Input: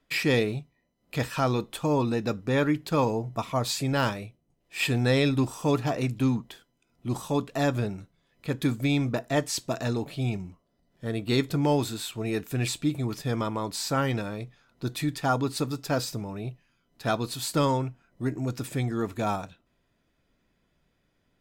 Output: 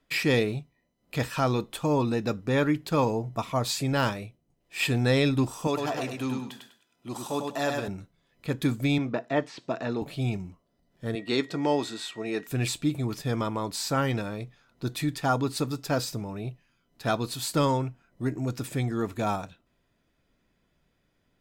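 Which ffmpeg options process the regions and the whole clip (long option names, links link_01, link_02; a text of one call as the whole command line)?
ffmpeg -i in.wav -filter_complex "[0:a]asettb=1/sr,asplit=3[link_01][link_02][link_03];[link_01]atrim=end=5.674[link_04];[link_02]atrim=start=5.67:end=7.88,asetpts=PTS-STARTPTS,afade=type=in:duration=0.004:curve=qsin,afade=type=out:start_time=2.206:duration=0.004:curve=qsin,highpass=frequency=470:poles=1,bandreject=frequency=2200:width=22,aecho=1:1:100|200|300|400:0.631|0.177|0.0495|0.0139,atrim=end_sample=97461[link_05];[link_03]atrim=start=7.876[link_06];[link_04][link_05]acrossfade=duration=0.004:curve1=hsin:curve2=qsin[link_07];[link_07][link_06]acrossfade=duration=0.004:curve1=qsin:curve2=hsin,asettb=1/sr,asplit=3[link_08][link_09][link_10];[link_08]atrim=end=8.984[link_11];[link_09]atrim=start=8.98:end=10.02,asetpts=PTS-STARTPTS,afade=type=in:duration=0.004:curve=qsin,afade=type=out:start_time=1.036:duration=0.004:curve=qsin,highpass=180,lowpass=4100,acrossover=split=3000[link_12][link_13];[link_13]acompressor=threshold=-49dB:ratio=4:attack=1:release=60[link_14];[link_12][link_14]amix=inputs=2:normalize=0[link_15];[link_10]atrim=start=10.016[link_16];[link_11][link_15]acrossfade=duration=0.004:curve1=hsin:curve2=qsin[link_17];[link_17][link_16]acrossfade=duration=0.004:curve1=qsin:curve2=hsin,asettb=1/sr,asplit=3[link_18][link_19][link_20];[link_18]atrim=end=11.154[link_21];[link_19]atrim=start=11.15:end=12.47,asetpts=PTS-STARTPTS,afade=type=in:duration=0.004:curve=qsin,afade=type=out:start_time=1.316:duration=0.004:curve=qsin,highpass=250,lowpass=6700,aeval=exprs='val(0)+0.00316*sin(2*PI*1900*n/s)':channel_layout=same[link_22];[link_20]atrim=start=12.466[link_23];[link_21][link_22]acrossfade=duration=0.004:curve1=hsin:curve2=qsin[link_24];[link_24][link_23]acrossfade=duration=0.004:curve1=qsin:curve2=hsin" out.wav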